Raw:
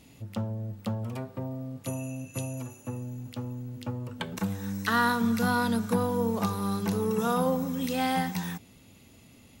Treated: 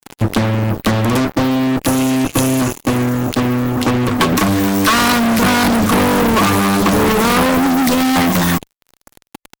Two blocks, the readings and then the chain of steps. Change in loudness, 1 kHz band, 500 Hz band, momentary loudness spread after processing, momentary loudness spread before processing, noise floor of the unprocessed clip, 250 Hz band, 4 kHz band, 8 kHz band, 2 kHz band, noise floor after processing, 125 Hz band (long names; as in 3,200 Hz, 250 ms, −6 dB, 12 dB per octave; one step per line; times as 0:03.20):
+16.0 dB, +15.0 dB, +14.5 dB, 4 LU, 12 LU, −55 dBFS, +16.5 dB, +19.5 dB, +20.0 dB, +16.0 dB, −77 dBFS, +14.5 dB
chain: hollow resonant body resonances 300/1,100 Hz, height 15 dB, ringing for 55 ms
fuzz pedal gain 39 dB, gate −42 dBFS
harmonic and percussive parts rebalanced percussive +6 dB